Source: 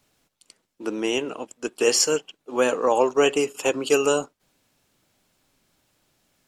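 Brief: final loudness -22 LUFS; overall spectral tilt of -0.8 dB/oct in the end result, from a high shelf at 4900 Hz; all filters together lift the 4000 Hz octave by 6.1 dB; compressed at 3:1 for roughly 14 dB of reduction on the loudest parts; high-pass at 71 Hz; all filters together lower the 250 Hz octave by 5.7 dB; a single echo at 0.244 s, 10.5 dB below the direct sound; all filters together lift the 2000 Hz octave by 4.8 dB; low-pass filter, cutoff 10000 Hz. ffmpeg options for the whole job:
-af "highpass=71,lowpass=10k,equalizer=f=250:t=o:g=-8,equalizer=f=2k:t=o:g=3.5,equalizer=f=4k:t=o:g=6,highshelf=f=4.9k:g=4,acompressor=threshold=-31dB:ratio=3,aecho=1:1:244:0.299,volume=10dB"

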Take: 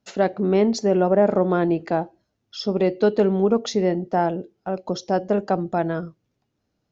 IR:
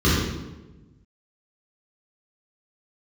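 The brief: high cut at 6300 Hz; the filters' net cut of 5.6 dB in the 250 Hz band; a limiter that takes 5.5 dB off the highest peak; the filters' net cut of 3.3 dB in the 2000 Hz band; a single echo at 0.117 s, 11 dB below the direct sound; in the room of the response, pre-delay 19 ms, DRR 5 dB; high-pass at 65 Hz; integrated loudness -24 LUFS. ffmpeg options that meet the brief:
-filter_complex "[0:a]highpass=65,lowpass=6.3k,equalizer=f=250:t=o:g=-9,equalizer=f=2k:t=o:g=-4.5,alimiter=limit=-14.5dB:level=0:latency=1,aecho=1:1:117:0.282,asplit=2[a][b];[1:a]atrim=start_sample=2205,adelay=19[c];[b][c]afir=irnorm=-1:irlink=0,volume=-24.5dB[d];[a][d]amix=inputs=2:normalize=0,volume=-2dB"

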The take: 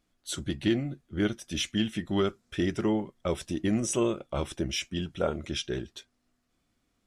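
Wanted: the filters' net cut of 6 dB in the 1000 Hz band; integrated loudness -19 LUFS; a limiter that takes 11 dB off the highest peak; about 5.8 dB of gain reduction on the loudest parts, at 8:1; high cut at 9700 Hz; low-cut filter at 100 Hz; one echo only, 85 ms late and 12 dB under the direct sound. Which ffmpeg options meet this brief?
-af "highpass=100,lowpass=9.7k,equalizer=f=1k:t=o:g=-8.5,acompressor=threshold=-28dB:ratio=8,alimiter=level_in=5dB:limit=-24dB:level=0:latency=1,volume=-5dB,aecho=1:1:85:0.251,volume=20.5dB"

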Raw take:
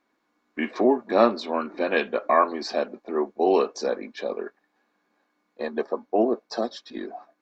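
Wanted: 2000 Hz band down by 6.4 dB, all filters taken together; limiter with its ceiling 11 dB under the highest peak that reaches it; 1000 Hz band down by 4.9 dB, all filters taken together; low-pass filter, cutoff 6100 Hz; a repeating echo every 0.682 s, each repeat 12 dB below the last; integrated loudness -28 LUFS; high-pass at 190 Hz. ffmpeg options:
-af "highpass=190,lowpass=6.1k,equalizer=f=1k:t=o:g=-5,equalizer=f=2k:t=o:g=-6.5,alimiter=limit=-18dB:level=0:latency=1,aecho=1:1:682|1364|2046:0.251|0.0628|0.0157,volume=3dB"

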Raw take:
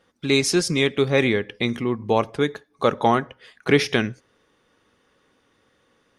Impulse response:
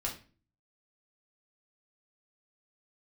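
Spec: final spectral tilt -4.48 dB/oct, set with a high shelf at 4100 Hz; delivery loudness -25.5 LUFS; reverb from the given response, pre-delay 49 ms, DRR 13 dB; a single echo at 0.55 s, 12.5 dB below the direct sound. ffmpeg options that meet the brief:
-filter_complex "[0:a]highshelf=f=4.1k:g=-7.5,aecho=1:1:550:0.237,asplit=2[a][b];[1:a]atrim=start_sample=2205,adelay=49[c];[b][c]afir=irnorm=-1:irlink=0,volume=-15.5dB[d];[a][d]amix=inputs=2:normalize=0,volume=-3dB"

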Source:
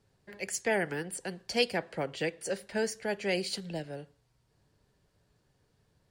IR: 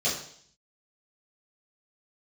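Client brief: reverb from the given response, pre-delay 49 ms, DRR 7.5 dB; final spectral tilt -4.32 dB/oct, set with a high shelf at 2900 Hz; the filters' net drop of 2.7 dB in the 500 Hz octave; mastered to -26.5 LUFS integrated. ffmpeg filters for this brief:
-filter_complex "[0:a]equalizer=f=500:t=o:g=-3,highshelf=f=2.9k:g=-7.5,asplit=2[a][b];[1:a]atrim=start_sample=2205,adelay=49[c];[b][c]afir=irnorm=-1:irlink=0,volume=-18dB[d];[a][d]amix=inputs=2:normalize=0,volume=8.5dB"

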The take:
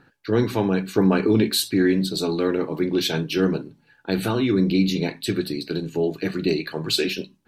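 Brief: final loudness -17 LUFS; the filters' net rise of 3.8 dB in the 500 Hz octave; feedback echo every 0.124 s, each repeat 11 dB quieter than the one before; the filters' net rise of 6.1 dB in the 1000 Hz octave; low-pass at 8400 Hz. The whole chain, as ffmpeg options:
-af "lowpass=8.4k,equalizer=f=500:t=o:g=4,equalizer=f=1k:t=o:g=6.5,aecho=1:1:124|248|372:0.282|0.0789|0.0221,volume=3dB"

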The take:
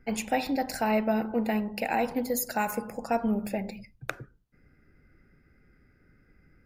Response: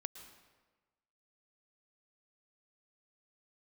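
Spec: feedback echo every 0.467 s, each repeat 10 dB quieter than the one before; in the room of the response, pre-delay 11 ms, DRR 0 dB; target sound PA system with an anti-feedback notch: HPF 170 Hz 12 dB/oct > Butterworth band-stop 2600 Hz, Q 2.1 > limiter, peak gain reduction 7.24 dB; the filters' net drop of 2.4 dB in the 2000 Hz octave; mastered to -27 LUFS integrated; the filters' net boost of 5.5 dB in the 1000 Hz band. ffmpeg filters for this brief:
-filter_complex "[0:a]equalizer=f=1k:t=o:g=8.5,equalizer=f=2k:t=o:g=-5,aecho=1:1:467|934|1401|1868:0.316|0.101|0.0324|0.0104,asplit=2[a][b];[1:a]atrim=start_sample=2205,adelay=11[c];[b][c]afir=irnorm=-1:irlink=0,volume=3dB[d];[a][d]amix=inputs=2:normalize=0,highpass=170,asuperstop=centerf=2600:order=8:qfactor=2.1,volume=0.5dB,alimiter=limit=-16.5dB:level=0:latency=1"

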